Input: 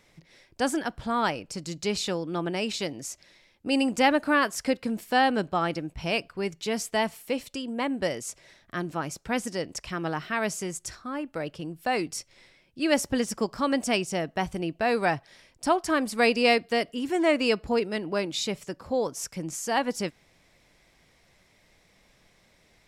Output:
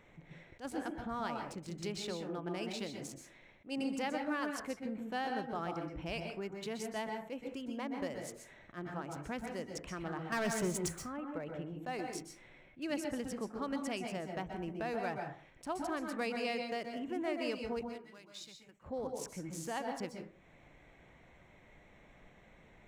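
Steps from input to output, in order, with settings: Wiener smoothing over 9 samples; compressor 2:1, threshold -51 dBFS, peak gain reduction 18.5 dB; 10.32–10.89 sample leveller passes 3; 17.81–18.83 passive tone stack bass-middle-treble 5-5-5; reverb RT60 0.45 s, pre-delay 0.118 s, DRR 3.5 dB; attack slew limiter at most 310 dB/s; gain +1.5 dB

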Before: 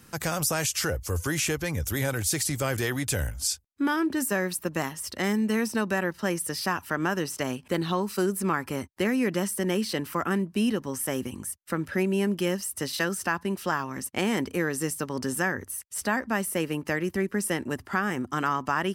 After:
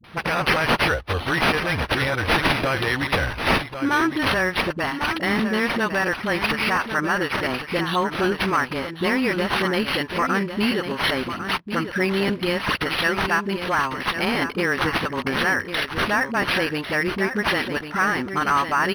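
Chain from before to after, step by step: tilt shelf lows -6 dB, about 780 Hz; in parallel at +2 dB: limiter -16.5 dBFS, peak gain reduction 9 dB; on the sum: dispersion highs, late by 42 ms, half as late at 390 Hz; on a send: echo 1.099 s -9 dB; on the sum: crackling interface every 0.69 s, samples 512, repeat, from 0.54; decimation joined by straight lines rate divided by 6×

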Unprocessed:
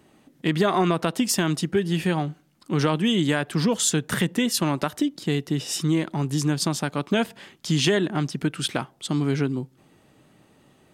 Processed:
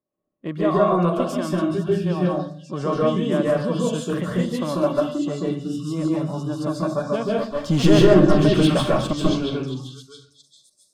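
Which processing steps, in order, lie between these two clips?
reverse delay 0.313 s, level -12.5 dB; low shelf 140 Hz -11 dB; small resonant body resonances 580/1100 Hz, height 14 dB, ringing for 40 ms; 7.37–9.13 sample leveller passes 3; tilt -2.5 dB/oct; delay with a stepping band-pass 0.674 s, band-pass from 3400 Hz, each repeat 0.7 oct, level -3 dB; spectral noise reduction 26 dB; reverb RT60 0.45 s, pre-delay 0.135 s, DRR -3.5 dB; mismatched tape noise reduction decoder only; gain -8.5 dB

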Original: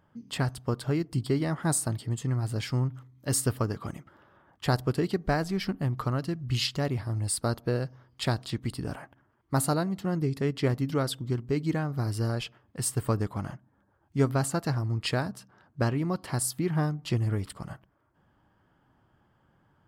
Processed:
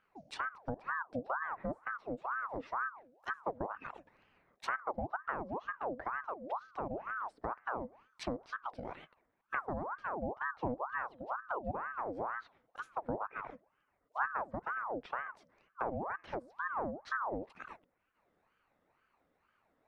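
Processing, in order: treble ducked by the level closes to 490 Hz, closed at -24 dBFS; ring modulator with a swept carrier 900 Hz, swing 60%, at 2.1 Hz; gain -7 dB

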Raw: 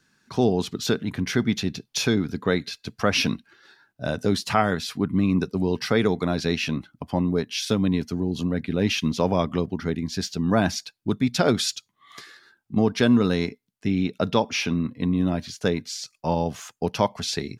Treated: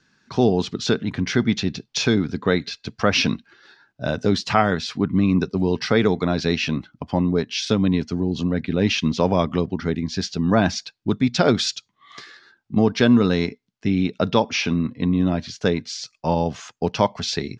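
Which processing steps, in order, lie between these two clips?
LPF 6300 Hz 24 dB/oct; gain +3 dB

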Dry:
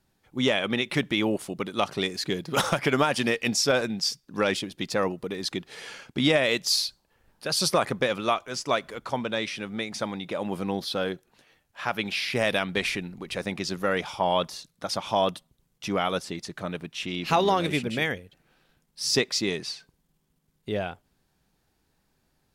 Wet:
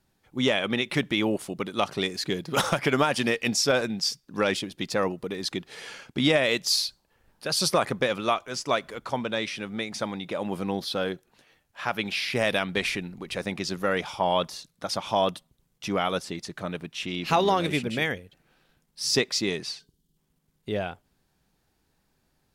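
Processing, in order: spectral gain 19.79–20.17, 470–2800 Hz -12 dB

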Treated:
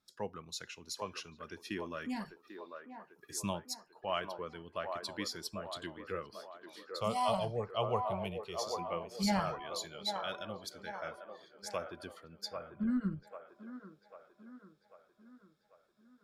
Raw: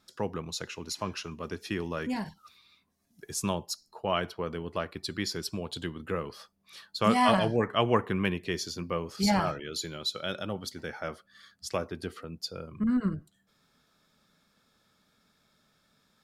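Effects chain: spectral noise reduction 8 dB; 6.86–8.59 fixed phaser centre 690 Hz, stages 4; band-limited delay 0.794 s, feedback 52%, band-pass 740 Hz, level -4.5 dB; gain -6 dB

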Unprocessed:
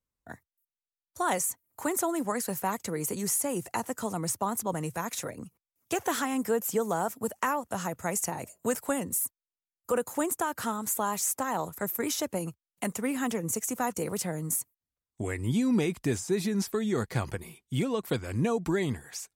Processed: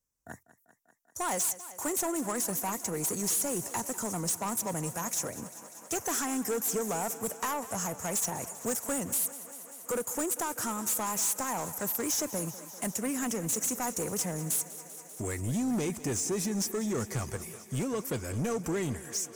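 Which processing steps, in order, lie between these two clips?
resonant high shelf 4900 Hz +6 dB, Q 3; soft clip -26.5 dBFS, distortion -8 dB; on a send: thinning echo 0.196 s, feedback 83%, high-pass 170 Hz, level -16 dB

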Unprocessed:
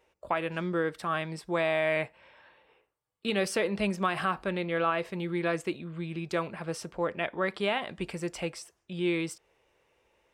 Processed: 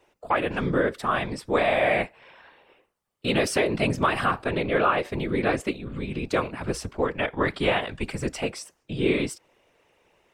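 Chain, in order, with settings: whisperiser; 6.6–8.4 frequency shift -67 Hz; gain +5.5 dB

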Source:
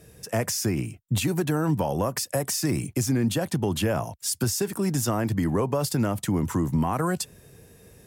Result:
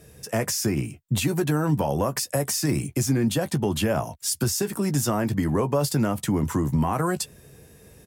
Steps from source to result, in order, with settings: doubler 14 ms -10 dB; gain +1 dB

